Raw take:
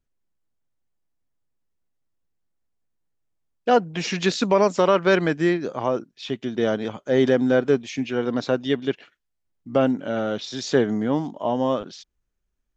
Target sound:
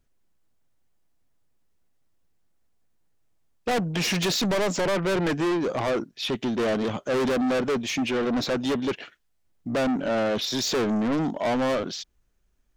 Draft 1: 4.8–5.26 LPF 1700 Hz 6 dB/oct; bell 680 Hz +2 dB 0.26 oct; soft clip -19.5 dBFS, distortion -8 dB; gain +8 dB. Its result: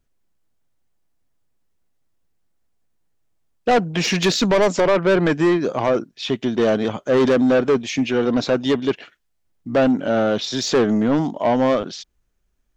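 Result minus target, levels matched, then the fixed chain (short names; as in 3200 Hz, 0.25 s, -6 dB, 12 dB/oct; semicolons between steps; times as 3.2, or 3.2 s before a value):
soft clip: distortion -6 dB
4.8–5.26 LPF 1700 Hz 6 dB/oct; bell 680 Hz +2 dB 0.26 oct; soft clip -30 dBFS, distortion -3 dB; gain +8 dB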